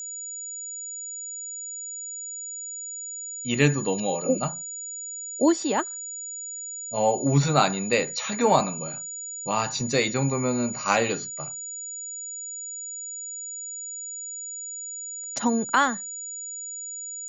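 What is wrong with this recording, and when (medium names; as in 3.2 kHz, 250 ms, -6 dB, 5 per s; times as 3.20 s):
whine 6.9 kHz -33 dBFS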